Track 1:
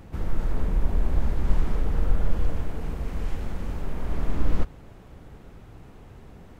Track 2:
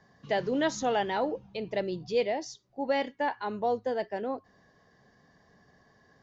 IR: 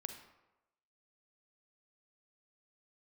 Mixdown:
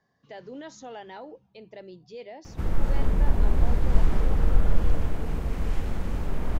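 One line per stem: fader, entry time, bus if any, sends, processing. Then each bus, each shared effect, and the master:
+2.0 dB, 2.45 s, no send, dry
-11.0 dB, 0.00 s, no send, notches 50/100/150/200 Hz; limiter -21.5 dBFS, peak gain reduction 4.5 dB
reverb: off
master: dry

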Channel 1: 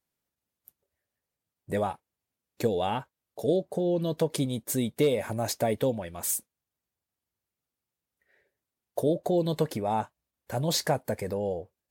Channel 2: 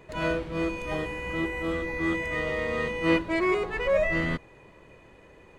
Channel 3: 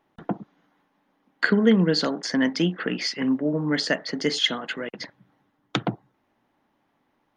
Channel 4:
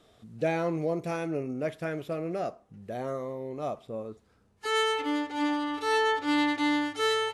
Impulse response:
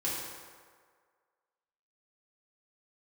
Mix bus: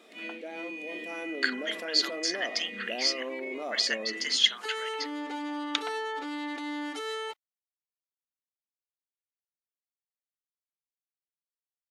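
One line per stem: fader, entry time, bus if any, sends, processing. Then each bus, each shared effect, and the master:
off
-11.5 dB, 0.00 s, bus A, no send, vocal rider; EQ curve 280 Hz 0 dB, 1200 Hz -21 dB, 2200 Hz +9 dB, 5500 Hz -3 dB
+2.5 dB, 0.00 s, no bus, no send, Bessel high-pass 2800 Hz, order 2
1.02 s -14.5 dB -> 1.39 s -4.5 dB, 0.00 s, bus A, no send, fast leveller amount 50%
bus A: 0.0 dB, brick-wall FIR high-pass 200 Hz; limiter -28 dBFS, peak gain reduction 7 dB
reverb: off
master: dry

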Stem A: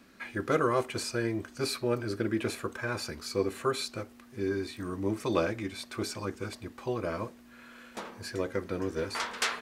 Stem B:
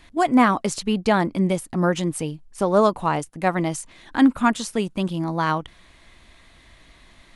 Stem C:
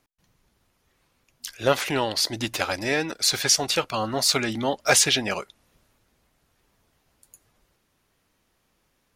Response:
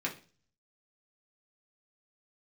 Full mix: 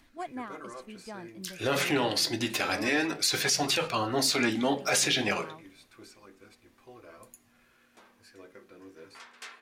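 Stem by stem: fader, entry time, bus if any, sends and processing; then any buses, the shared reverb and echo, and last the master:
-14.0 dB, 0.00 s, send -7.5 dB, low shelf 350 Hz -6.5 dB; upward compressor, threshold -46 dBFS
-8.0 dB, 0.00 s, no send, auto duck -13 dB, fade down 0.50 s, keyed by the third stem
-1.5 dB, 0.00 s, send -3.5 dB, dry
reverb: on, RT60 0.35 s, pre-delay 3 ms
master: flange 0.27 Hz, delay 0.9 ms, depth 6.6 ms, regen -64%; limiter -15.5 dBFS, peak gain reduction 10.5 dB

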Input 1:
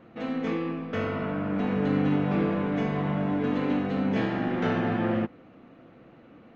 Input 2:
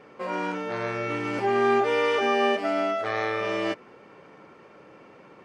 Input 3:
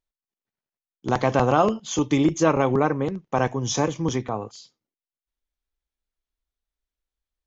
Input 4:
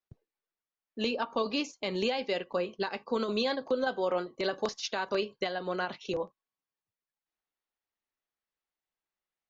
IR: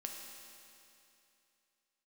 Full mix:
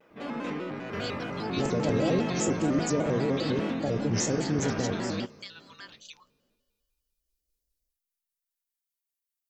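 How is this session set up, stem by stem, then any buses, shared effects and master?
-6.0 dB, 0.00 s, no bus, no send, gate with hold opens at -42 dBFS; high shelf 4500 Hz +11 dB
-10.5 dB, 0.00 s, no bus, no send, limiter -18 dBFS, peak gain reduction 7 dB
-13.5 dB, 0.50 s, bus A, send -8.5 dB, elliptic band-stop 570–4500 Hz; AGC gain up to 16 dB
+1.5 dB, 0.00 s, bus A, send -20.5 dB, elliptic high-pass 920 Hz; differentiator
bus A: 0.0 dB, high shelf 5400 Hz +5 dB; limiter -22 dBFS, peak gain reduction 8 dB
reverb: on, RT60 2.8 s, pre-delay 4 ms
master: shaped vibrato square 5 Hz, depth 160 cents

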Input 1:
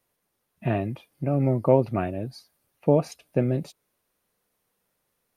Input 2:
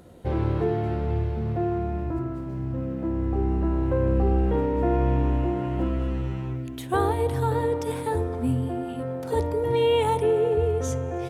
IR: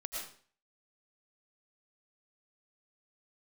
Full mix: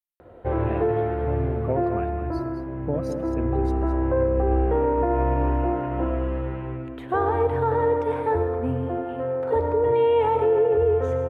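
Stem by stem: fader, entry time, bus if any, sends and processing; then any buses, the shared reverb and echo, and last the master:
-7.0 dB, 0.00 s, send -18.5 dB, echo send -9 dB, per-bin expansion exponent 1.5
-3.5 dB, 0.20 s, send -4 dB, no echo send, EQ curve 110 Hz 0 dB, 170 Hz -8 dB, 460 Hz +6 dB, 1600 Hz +5 dB, 2700 Hz -3 dB, 5900 Hz -22 dB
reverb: on, RT60 0.45 s, pre-delay 70 ms
echo: echo 0.212 s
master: limiter -13 dBFS, peak gain reduction 5.5 dB

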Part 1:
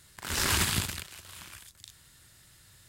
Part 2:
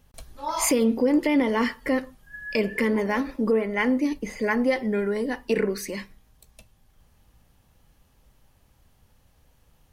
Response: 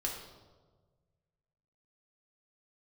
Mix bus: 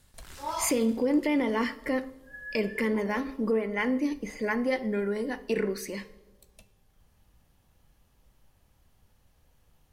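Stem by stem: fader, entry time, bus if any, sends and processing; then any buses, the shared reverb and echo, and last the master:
-9.0 dB, 0.00 s, send -16 dB, limiter -21 dBFS, peak gain reduction 8 dB; auto duck -21 dB, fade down 0.75 s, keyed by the second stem
-5.5 dB, 0.00 s, send -15.5 dB, de-hum 266.3 Hz, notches 33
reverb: on, RT60 1.4 s, pre-delay 3 ms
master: dry

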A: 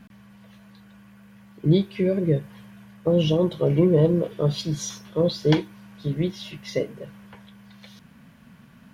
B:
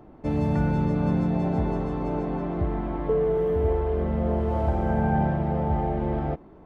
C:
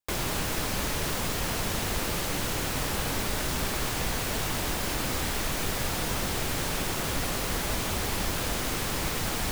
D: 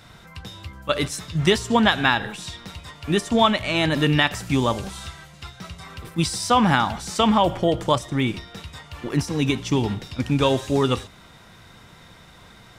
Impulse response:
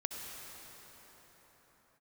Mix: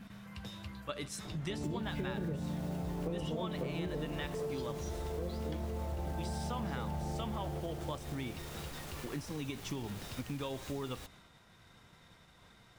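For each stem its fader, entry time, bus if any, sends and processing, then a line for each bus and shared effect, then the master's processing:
3.55 s -1.5 dB -> 4.09 s -13.5 dB, 0.00 s, bus A, no send, no echo send, dry
+1.0 dB, 1.25 s, bus B, no send, echo send -8 dB, limiter -22.5 dBFS, peak gain reduction 10 dB
-14.5 dB, 1.55 s, bus A, no send, no echo send, limiter -22 dBFS, peak gain reduction 5.5 dB
-9.5 dB, 0.00 s, bus B, no send, no echo send, expander -43 dBFS
bus A: 0.0 dB, compressor, threshold -25 dBFS, peak gain reduction 10.5 dB
bus B: 0.0 dB, compressor 1.5:1, threshold -33 dBFS, peak gain reduction 5 dB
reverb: off
echo: feedback echo 0.367 s, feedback 52%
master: compressor 3:1, threshold -38 dBFS, peak gain reduction 13 dB

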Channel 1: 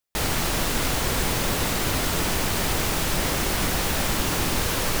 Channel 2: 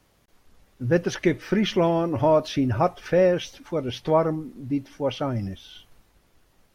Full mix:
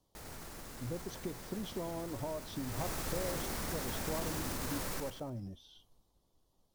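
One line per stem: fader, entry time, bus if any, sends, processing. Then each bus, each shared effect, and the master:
2.51 s -18 dB -> 2.84 s -8.5 dB, 0.00 s, no send, echo send -5.5 dB, bell 3000 Hz -6 dB 0.97 oct; limiter -22 dBFS, peak gain reduction 11 dB
-12.5 dB, 0.00 s, no send, no echo send, band shelf 1900 Hz -14 dB 1.2 oct; compressor, threshold -25 dBFS, peak gain reduction 10 dB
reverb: off
echo: feedback echo 99 ms, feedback 41%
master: dry

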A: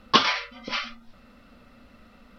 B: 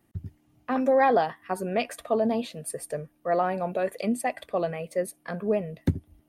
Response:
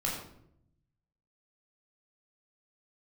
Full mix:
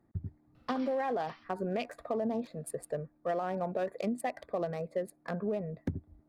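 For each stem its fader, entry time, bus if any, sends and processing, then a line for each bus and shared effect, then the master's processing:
-8.5 dB, 0.55 s, no send, compressor 2.5:1, threshold -30 dBFS, peak gain reduction 12.5 dB; auto duck -16 dB, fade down 1.40 s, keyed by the second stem
-1.5 dB, 0.00 s, no send, Wiener smoothing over 15 samples; de-esser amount 60%; limiter -18.5 dBFS, peak gain reduction 7.5 dB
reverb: off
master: compressor, threshold -29 dBFS, peak gain reduction 6.5 dB

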